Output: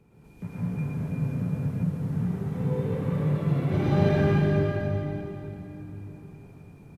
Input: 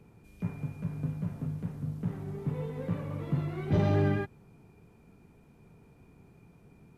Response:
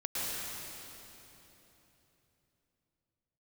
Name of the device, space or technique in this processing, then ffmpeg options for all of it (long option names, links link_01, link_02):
cave: -filter_complex "[0:a]aecho=1:1:360:0.335[link_01];[1:a]atrim=start_sample=2205[link_02];[link_01][link_02]afir=irnorm=-1:irlink=0"